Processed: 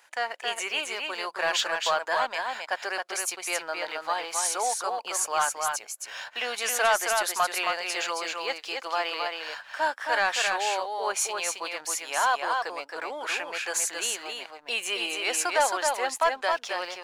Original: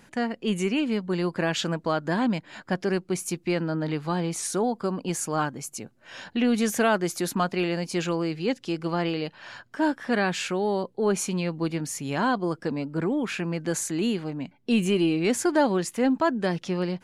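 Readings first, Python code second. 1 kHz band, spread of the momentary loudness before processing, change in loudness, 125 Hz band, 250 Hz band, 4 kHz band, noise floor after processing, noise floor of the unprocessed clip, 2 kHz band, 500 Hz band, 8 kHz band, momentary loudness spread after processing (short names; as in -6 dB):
+4.0 dB, 7 LU, -1.0 dB, under -30 dB, -22.5 dB, +5.0 dB, -49 dBFS, -59 dBFS, +4.5 dB, -4.5 dB, +5.0 dB, 8 LU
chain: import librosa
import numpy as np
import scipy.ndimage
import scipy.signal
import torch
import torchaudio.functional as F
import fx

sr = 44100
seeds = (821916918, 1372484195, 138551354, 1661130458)

y = scipy.signal.sosfilt(scipy.signal.butter(4, 660.0, 'highpass', fs=sr, output='sos'), x)
y = fx.leveller(y, sr, passes=1)
y = y + 10.0 ** (-4.0 / 20.0) * np.pad(y, (int(269 * sr / 1000.0), 0))[:len(y)]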